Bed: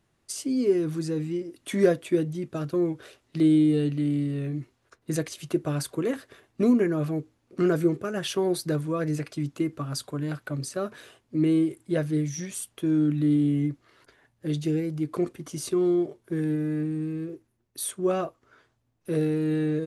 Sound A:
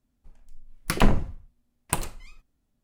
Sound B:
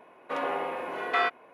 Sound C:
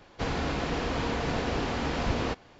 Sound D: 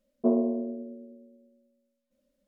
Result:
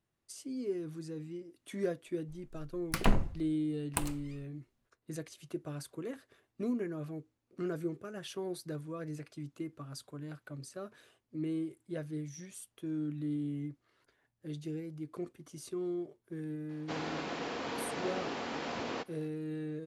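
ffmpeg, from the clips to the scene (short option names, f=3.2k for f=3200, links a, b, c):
-filter_complex "[0:a]volume=-13.5dB[a];[3:a]highpass=230[b];[1:a]atrim=end=2.83,asetpts=PTS-STARTPTS,volume=-7.5dB,afade=t=in:d=0.004:c=hsin,afade=t=out:st=2.826:d=0.004:c=hsin,adelay=2040[c];[b]atrim=end=2.59,asetpts=PTS-STARTPTS,volume=-6.5dB,afade=t=in:d=0.004:c=hsin,afade=t=out:st=2.586:d=0.004:c=hsin,adelay=16690[d];[a][c][d]amix=inputs=3:normalize=0"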